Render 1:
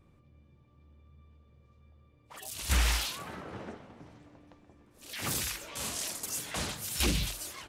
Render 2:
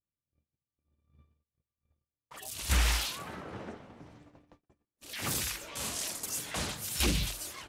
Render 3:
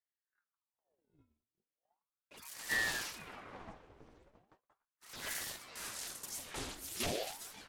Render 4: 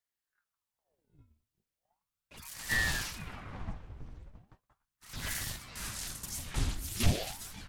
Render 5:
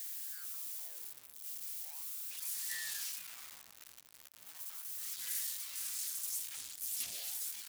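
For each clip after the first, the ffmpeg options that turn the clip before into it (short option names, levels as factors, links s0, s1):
-af "agate=range=0.0158:threshold=0.00178:ratio=16:detection=peak"
-af "flanger=delay=2.4:depth=8.7:regen=-59:speed=1.6:shape=sinusoidal,aeval=exprs='val(0)*sin(2*PI*1000*n/s+1000*0.85/0.37*sin(2*PI*0.37*n/s))':c=same,volume=0.891"
-af "asubboost=boost=8.5:cutoff=150,volume=1.5"
-af "aeval=exprs='val(0)+0.5*0.0266*sgn(val(0))':c=same,aderivative,volume=0.531"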